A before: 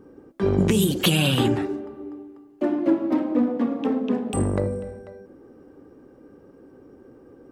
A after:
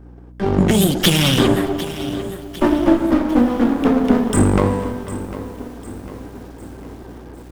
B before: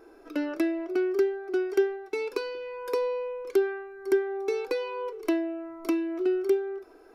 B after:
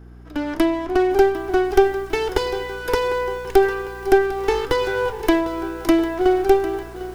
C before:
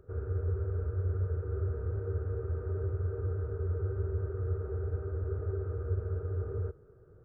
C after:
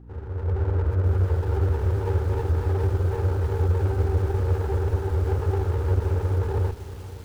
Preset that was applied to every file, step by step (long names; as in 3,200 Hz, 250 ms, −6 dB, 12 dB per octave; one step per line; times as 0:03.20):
lower of the sound and its delayed copy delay 0.6 ms
dynamic equaliser 120 Hz, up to −5 dB, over −42 dBFS, Q 3.5
automatic gain control gain up to 11.5 dB
mains hum 60 Hz, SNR 22 dB
spring reverb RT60 3.3 s, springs 48 ms, chirp 35 ms, DRR 18.5 dB
feedback echo at a low word length 751 ms, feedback 55%, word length 6 bits, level −14.5 dB